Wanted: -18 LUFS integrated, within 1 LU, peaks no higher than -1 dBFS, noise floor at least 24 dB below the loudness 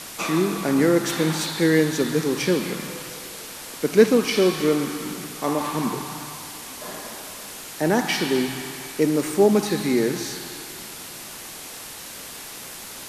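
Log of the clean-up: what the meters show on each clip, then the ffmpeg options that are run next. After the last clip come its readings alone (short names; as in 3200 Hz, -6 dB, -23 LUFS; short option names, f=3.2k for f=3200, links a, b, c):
noise floor -38 dBFS; noise floor target -47 dBFS; loudness -22.5 LUFS; peak -2.5 dBFS; loudness target -18.0 LUFS
-> -af "afftdn=nr=9:nf=-38"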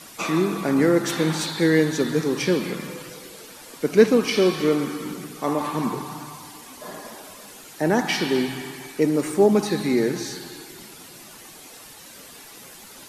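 noise floor -44 dBFS; noise floor target -46 dBFS
-> -af "afftdn=nr=6:nf=-44"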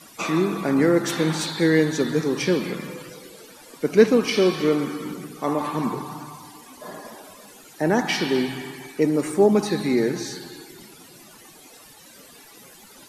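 noise floor -48 dBFS; loudness -22.0 LUFS; peak -2.5 dBFS; loudness target -18.0 LUFS
-> -af "volume=4dB,alimiter=limit=-1dB:level=0:latency=1"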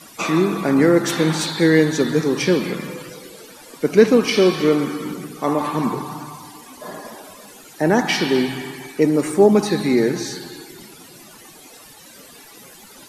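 loudness -18.5 LUFS; peak -1.0 dBFS; noise floor -44 dBFS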